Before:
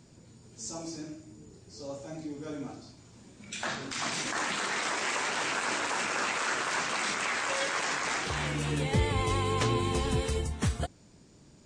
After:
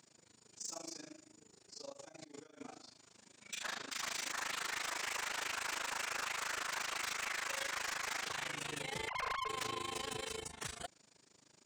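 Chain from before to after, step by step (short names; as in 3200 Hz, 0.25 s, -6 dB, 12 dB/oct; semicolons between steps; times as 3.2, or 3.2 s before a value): 9.08–9.49 sine-wave speech; HPF 1000 Hz 6 dB/oct; 1.92–2.6 negative-ratio compressor -52 dBFS, ratio -0.5; AM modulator 26 Hz, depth 90%; soft clip -37 dBFS, distortion -8 dB; gain +2 dB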